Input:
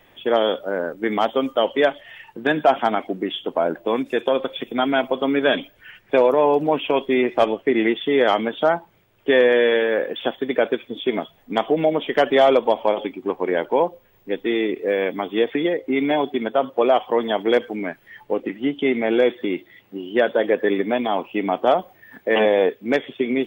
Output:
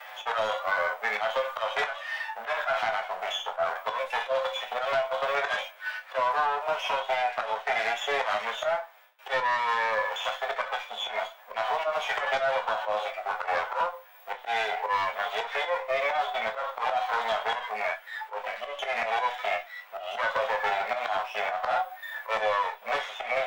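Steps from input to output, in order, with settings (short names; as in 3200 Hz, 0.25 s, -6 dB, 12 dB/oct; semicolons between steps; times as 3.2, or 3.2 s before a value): minimum comb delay 9.3 ms; gate with hold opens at -52 dBFS; inverse Chebyshev high-pass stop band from 340 Hz, stop band 40 dB; bell 1200 Hz +3 dB 1.1 oct; harmonic-percussive split percussive -13 dB; high shelf 2900 Hz -10 dB; in parallel at +1 dB: limiter -17.5 dBFS, peak gain reduction 7 dB; on the sum: auto swell 0.155 s; compressor 6:1, threshold -27 dBFS, peak gain reduction 12 dB; sine folder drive 4 dB, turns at -16.5 dBFS; on a send at -5 dB: reverb RT60 0.15 s, pre-delay 5 ms; on the sum: three-band squash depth 40%; gain -4 dB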